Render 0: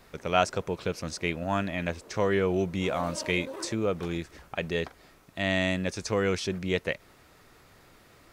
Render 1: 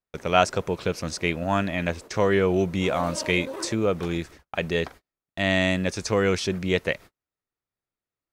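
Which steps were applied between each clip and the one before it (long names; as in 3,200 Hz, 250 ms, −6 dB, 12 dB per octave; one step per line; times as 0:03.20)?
noise gate −45 dBFS, range −42 dB
level +4.5 dB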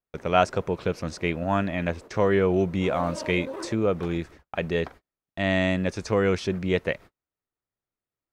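high-shelf EQ 3,300 Hz −10.5 dB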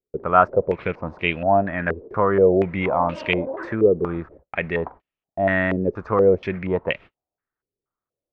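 low-pass on a step sequencer 4.2 Hz 420–2,800 Hz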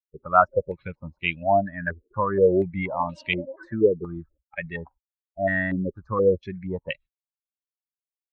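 spectral dynamics exaggerated over time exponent 2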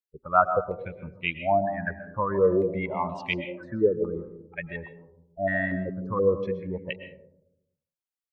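comb and all-pass reverb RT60 0.83 s, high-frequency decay 0.25×, pre-delay 85 ms, DRR 9 dB
level −3 dB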